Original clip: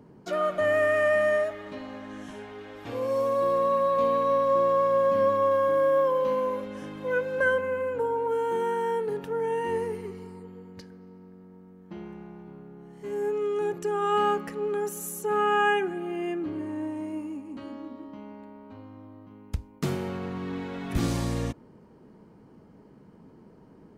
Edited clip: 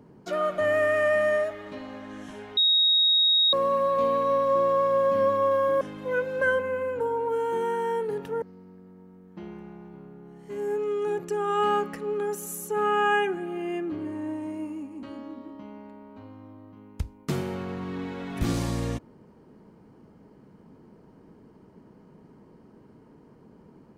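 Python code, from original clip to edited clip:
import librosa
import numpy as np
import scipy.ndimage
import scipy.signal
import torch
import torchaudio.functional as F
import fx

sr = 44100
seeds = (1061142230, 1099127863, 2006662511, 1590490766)

y = fx.edit(x, sr, fx.bleep(start_s=2.57, length_s=0.96, hz=3770.0, db=-17.5),
    fx.cut(start_s=5.81, length_s=0.99),
    fx.cut(start_s=9.41, length_s=1.55), tone=tone)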